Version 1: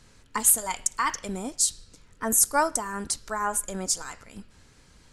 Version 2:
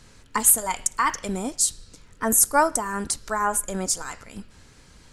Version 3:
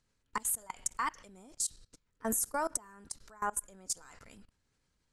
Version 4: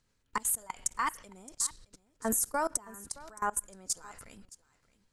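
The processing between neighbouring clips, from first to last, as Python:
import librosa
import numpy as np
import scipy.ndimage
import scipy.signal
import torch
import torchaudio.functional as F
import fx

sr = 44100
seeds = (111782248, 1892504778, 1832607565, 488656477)

y1 = fx.dynamic_eq(x, sr, hz=4600.0, q=0.71, threshold_db=-36.0, ratio=4.0, max_db=-5)
y1 = y1 * 10.0 ** (4.5 / 20.0)
y2 = fx.level_steps(y1, sr, step_db=23)
y2 = y2 * 10.0 ** (-8.5 / 20.0)
y3 = y2 + 10.0 ** (-19.5 / 20.0) * np.pad(y2, (int(619 * sr / 1000.0), 0))[:len(y2)]
y3 = y3 * 10.0 ** (2.5 / 20.0)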